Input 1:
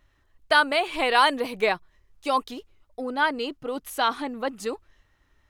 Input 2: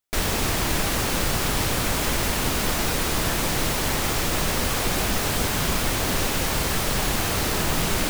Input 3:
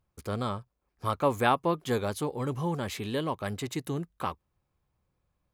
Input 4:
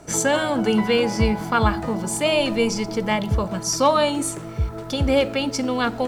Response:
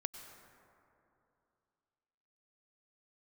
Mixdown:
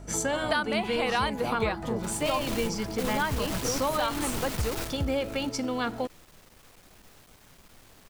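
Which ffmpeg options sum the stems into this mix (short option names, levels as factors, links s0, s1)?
-filter_complex "[0:a]aeval=exprs='val(0)+0.00708*(sin(2*PI*50*n/s)+sin(2*PI*2*50*n/s)/2+sin(2*PI*3*50*n/s)/3+sin(2*PI*4*50*n/s)/4+sin(2*PI*5*50*n/s)/5)':c=same,volume=0.944,asplit=2[s0][s1];[1:a]aeval=exprs='(tanh(20*val(0)+0.75)-tanh(0.75))/20':c=same,adelay=1900,volume=0.668[s2];[2:a]acrossover=split=1100[s3][s4];[s3]aeval=exprs='val(0)*(1-1/2+1/2*cos(2*PI*4.1*n/s))':c=same[s5];[s4]aeval=exprs='val(0)*(1-1/2-1/2*cos(2*PI*4.1*n/s))':c=same[s6];[s5][s6]amix=inputs=2:normalize=0,volume=0.708[s7];[3:a]volume=0.473[s8];[s1]apad=whole_len=440744[s9];[s2][s9]sidechaingate=range=0.0794:threshold=0.00794:ratio=16:detection=peak[s10];[s0][s10][s7][s8]amix=inputs=4:normalize=0,acompressor=threshold=0.0631:ratio=5"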